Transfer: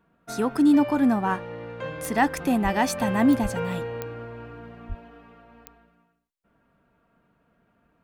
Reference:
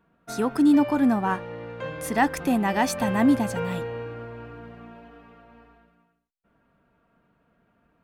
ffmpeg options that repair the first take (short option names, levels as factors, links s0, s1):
-filter_complex "[0:a]adeclick=t=4,asplit=3[s0][s1][s2];[s0]afade=t=out:st=2.63:d=0.02[s3];[s1]highpass=f=140:w=0.5412,highpass=f=140:w=1.3066,afade=t=in:st=2.63:d=0.02,afade=t=out:st=2.75:d=0.02[s4];[s2]afade=t=in:st=2.75:d=0.02[s5];[s3][s4][s5]amix=inputs=3:normalize=0,asplit=3[s6][s7][s8];[s6]afade=t=out:st=3.42:d=0.02[s9];[s7]highpass=f=140:w=0.5412,highpass=f=140:w=1.3066,afade=t=in:st=3.42:d=0.02,afade=t=out:st=3.54:d=0.02[s10];[s8]afade=t=in:st=3.54:d=0.02[s11];[s9][s10][s11]amix=inputs=3:normalize=0,asplit=3[s12][s13][s14];[s12]afade=t=out:st=4.88:d=0.02[s15];[s13]highpass=f=140:w=0.5412,highpass=f=140:w=1.3066,afade=t=in:st=4.88:d=0.02,afade=t=out:st=5:d=0.02[s16];[s14]afade=t=in:st=5:d=0.02[s17];[s15][s16][s17]amix=inputs=3:normalize=0"